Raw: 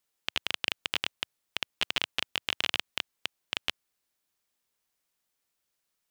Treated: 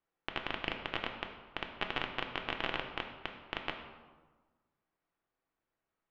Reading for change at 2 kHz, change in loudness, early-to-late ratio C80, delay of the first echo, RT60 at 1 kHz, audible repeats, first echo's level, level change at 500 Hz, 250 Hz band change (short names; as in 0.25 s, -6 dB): -4.5 dB, -6.5 dB, 8.5 dB, none, 1.3 s, none, none, +3.5 dB, +4.0 dB